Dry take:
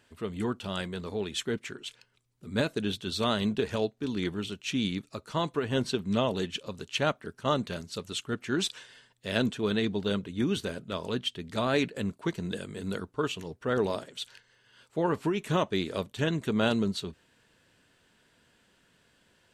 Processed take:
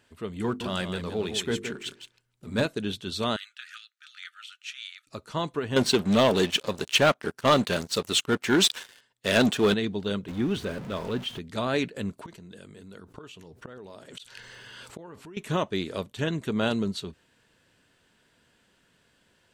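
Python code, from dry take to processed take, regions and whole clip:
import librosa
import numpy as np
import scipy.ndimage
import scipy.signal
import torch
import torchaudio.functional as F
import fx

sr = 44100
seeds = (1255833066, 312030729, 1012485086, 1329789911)

y = fx.chain(x, sr, fx.echo_single(ms=166, db=-8.5),
    fx.leveller(passes=1),
    fx.hum_notches(base_hz=50, count=9), at=(0.44, 2.66))
y = fx.chain(y, sr, fx.brickwall_highpass(low_hz=1200.0),
    fx.high_shelf(hz=2600.0, db=-6.5), at=(3.36, 5.07))
y = fx.chain(y, sr, fx.leveller(passes=3),
    fx.low_shelf(hz=190.0, db=-8.5), at=(5.76, 9.74))
y = fx.chain(y, sr, fx.zero_step(step_db=-34.5),
    fx.high_shelf(hz=4800.0, db=-11.5), at=(10.28, 11.39))
y = fx.chain(y, sr, fx.gate_flip(shuts_db=-31.0, range_db=-27),
    fx.env_flatten(amount_pct=70), at=(12.18, 15.37))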